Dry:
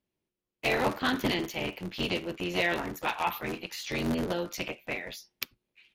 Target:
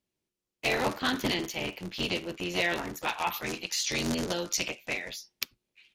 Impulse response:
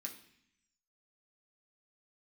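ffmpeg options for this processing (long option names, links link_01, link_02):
-af "asetnsamples=nb_out_samples=441:pad=0,asendcmd='3.34 equalizer g 14.5;5.1 equalizer g 6.5',equalizer=frequency=6400:width_type=o:width=1.7:gain=6.5,volume=-1.5dB"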